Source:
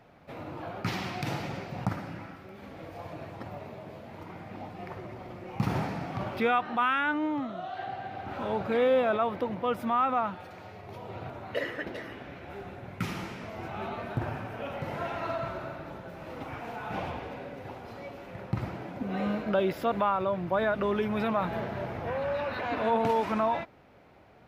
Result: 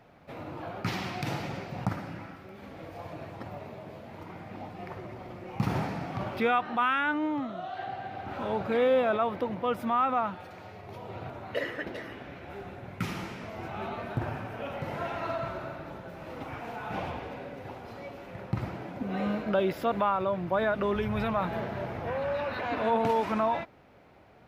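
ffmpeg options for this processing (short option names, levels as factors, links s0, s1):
-filter_complex "[0:a]asplit=3[s0][s1][s2];[s0]afade=t=out:st=20.94:d=0.02[s3];[s1]asubboost=boost=6:cutoff=100,afade=t=in:st=20.94:d=0.02,afade=t=out:st=21.38:d=0.02[s4];[s2]afade=t=in:st=21.38:d=0.02[s5];[s3][s4][s5]amix=inputs=3:normalize=0"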